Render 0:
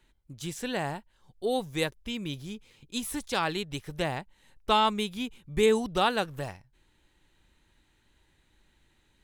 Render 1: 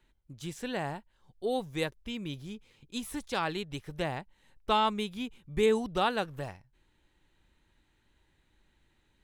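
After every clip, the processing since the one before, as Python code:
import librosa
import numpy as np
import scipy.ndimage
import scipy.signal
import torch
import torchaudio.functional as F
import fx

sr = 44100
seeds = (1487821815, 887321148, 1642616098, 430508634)

y = fx.high_shelf(x, sr, hz=4200.0, db=-5.5)
y = y * 10.0 ** (-2.5 / 20.0)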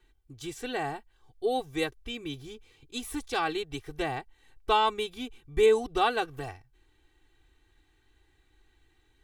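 y = x + 0.88 * np.pad(x, (int(2.6 * sr / 1000.0), 0))[:len(x)]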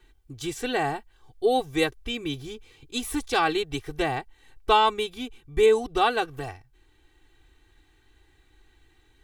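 y = fx.rider(x, sr, range_db=4, speed_s=2.0)
y = y * 10.0 ** (3.0 / 20.0)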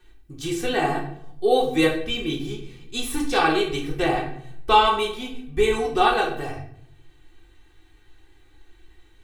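y = fx.room_shoebox(x, sr, seeds[0], volume_m3=120.0, walls='mixed', distance_m=0.98)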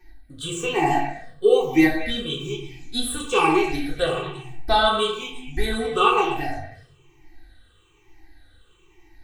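y = fx.spec_ripple(x, sr, per_octave=0.74, drift_hz=-1.1, depth_db=19)
y = fx.echo_stepped(y, sr, ms=114, hz=960.0, octaves=1.4, feedback_pct=70, wet_db=-6)
y = y * 10.0 ** (-3.0 / 20.0)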